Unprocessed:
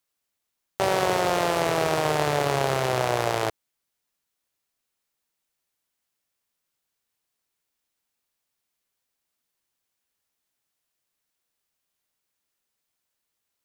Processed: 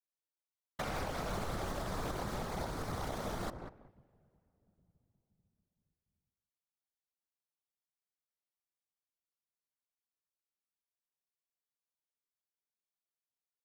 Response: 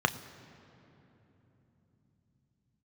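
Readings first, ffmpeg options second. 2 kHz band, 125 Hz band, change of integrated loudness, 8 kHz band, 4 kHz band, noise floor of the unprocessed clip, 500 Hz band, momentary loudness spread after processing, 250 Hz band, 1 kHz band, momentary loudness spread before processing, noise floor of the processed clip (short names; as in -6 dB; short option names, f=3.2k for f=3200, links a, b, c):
-16.5 dB, -11.0 dB, -15.5 dB, -15.0 dB, -16.0 dB, -81 dBFS, -18.0 dB, 5 LU, -11.0 dB, -16.0 dB, 5 LU, under -85 dBFS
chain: -filter_complex "[0:a]asplit=2[a][b];[1:a]atrim=start_sample=2205,asetrate=41454,aresample=44100[c];[b][c]afir=irnorm=-1:irlink=0,volume=-19dB[d];[a][d]amix=inputs=2:normalize=0,aeval=exprs='0.473*(cos(1*acos(clip(val(0)/0.473,-1,1)))-cos(1*PI/2))+0.133*(cos(6*acos(clip(val(0)/0.473,-1,1)))-cos(6*PI/2))+0.0841*(cos(7*acos(clip(val(0)/0.473,-1,1)))-cos(7*PI/2))':c=same,asplit=2[e][f];[f]adelay=191,lowpass=f=880:p=1,volume=-14dB,asplit=2[g][h];[h]adelay=191,lowpass=f=880:p=1,volume=0.2[i];[e][g][i]amix=inputs=3:normalize=0,asoftclip=type=tanh:threshold=-10dB,afftfilt=real='hypot(re,im)*cos(2*PI*random(0))':imag='hypot(re,im)*sin(2*PI*random(1))':win_size=512:overlap=0.75,adynamicequalizer=threshold=0.00398:dfrequency=2200:dqfactor=0.98:tfrequency=2200:tqfactor=0.98:attack=5:release=100:ratio=0.375:range=4:mode=cutabove:tftype=bell,alimiter=level_in=1.5dB:limit=-24dB:level=0:latency=1:release=317,volume=-1.5dB,volume=-2.5dB"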